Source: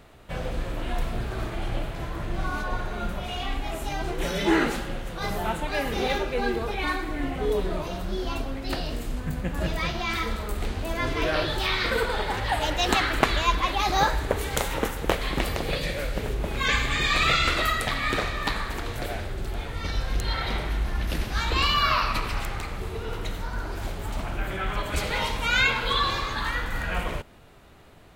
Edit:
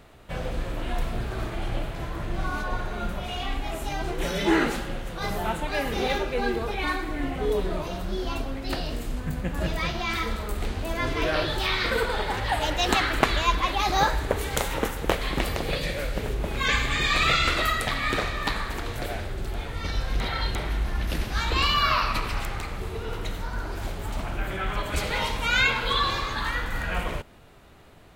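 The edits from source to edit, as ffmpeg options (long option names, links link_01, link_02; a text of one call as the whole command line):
ffmpeg -i in.wav -filter_complex "[0:a]asplit=3[link_01][link_02][link_03];[link_01]atrim=end=20.202[link_04];[link_02]atrim=start=20.198:end=20.552,asetpts=PTS-STARTPTS,areverse[link_05];[link_03]atrim=start=20.548[link_06];[link_04][link_05]acrossfade=duration=0.004:curve1=hsin:curve2=hsin[link_07];[link_07][link_06]acrossfade=duration=0.004:curve1=hsin:curve2=hsin" out.wav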